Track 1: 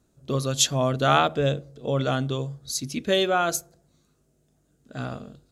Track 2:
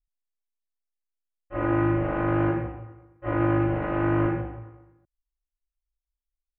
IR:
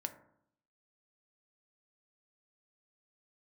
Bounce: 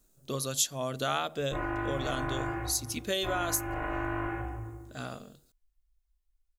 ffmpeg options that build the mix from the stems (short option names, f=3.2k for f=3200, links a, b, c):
-filter_complex "[0:a]aemphasis=mode=production:type=bsi,volume=-5dB[a];[1:a]aecho=1:1:2.8:0.57,acrossover=split=86|630[b][c][d];[b]acompressor=threshold=-48dB:ratio=4[e];[c]acompressor=threshold=-42dB:ratio=4[f];[d]acompressor=threshold=-33dB:ratio=4[g];[e][f][g]amix=inputs=3:normalize=0,volume=1dB[h];[a][h]amix=inputs=2:normalize=0,lowshelf=f=100:g=10,acompressor=threshold=-29dB:ratio=2.5"